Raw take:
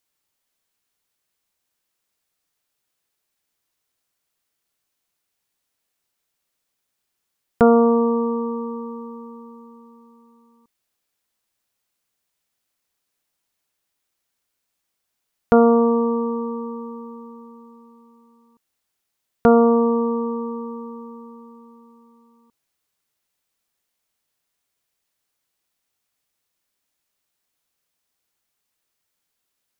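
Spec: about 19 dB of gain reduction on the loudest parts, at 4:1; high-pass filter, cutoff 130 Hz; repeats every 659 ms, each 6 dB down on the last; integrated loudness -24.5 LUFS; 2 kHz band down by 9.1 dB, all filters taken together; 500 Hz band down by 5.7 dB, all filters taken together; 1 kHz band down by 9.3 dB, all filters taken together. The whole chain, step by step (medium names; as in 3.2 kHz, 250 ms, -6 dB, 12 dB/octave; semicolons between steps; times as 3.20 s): high-pass 130 Hz; peaking EQ 500 Hz -4 dB; peaking EQ 1 kHz -9 dB; peaking EQ 2 kHz -8.5 dB; compression 4:1, threshold -37 dBFS; feedback delay 659 ms, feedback 50%, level -6 dB; trim +16 dB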